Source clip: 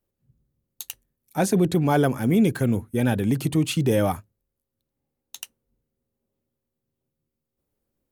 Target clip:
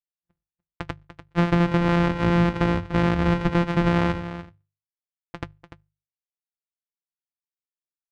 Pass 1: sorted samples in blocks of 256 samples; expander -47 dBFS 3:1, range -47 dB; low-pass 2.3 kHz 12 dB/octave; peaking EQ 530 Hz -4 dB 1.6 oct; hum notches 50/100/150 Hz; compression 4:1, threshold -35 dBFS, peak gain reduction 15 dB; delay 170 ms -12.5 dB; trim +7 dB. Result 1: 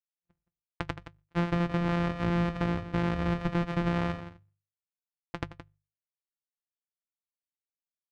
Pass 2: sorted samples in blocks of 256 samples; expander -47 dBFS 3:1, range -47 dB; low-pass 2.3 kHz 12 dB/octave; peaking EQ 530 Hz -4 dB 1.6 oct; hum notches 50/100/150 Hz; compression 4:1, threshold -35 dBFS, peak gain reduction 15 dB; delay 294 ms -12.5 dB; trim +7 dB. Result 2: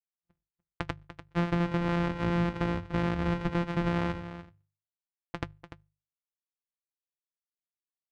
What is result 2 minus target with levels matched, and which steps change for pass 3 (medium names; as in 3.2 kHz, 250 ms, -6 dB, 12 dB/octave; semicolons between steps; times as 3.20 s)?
compression: peak gain reduction +8.5 dB
change: compression 4:1, threshold -24 dBFS, peak gain reduction 7 dB